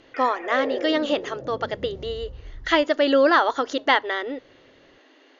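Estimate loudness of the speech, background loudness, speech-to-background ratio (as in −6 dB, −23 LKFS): −22.5 LKFS, −34.0 LKFS, 11.5 dB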